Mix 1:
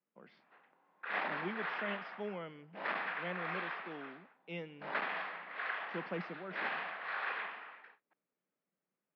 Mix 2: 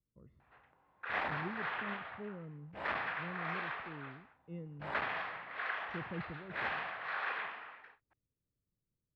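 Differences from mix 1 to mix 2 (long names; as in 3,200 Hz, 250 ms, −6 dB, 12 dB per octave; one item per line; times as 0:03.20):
speech: add moving average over 56 samples
master: remove Chebyshev band-pass filter 180–5,200 Hz, order 4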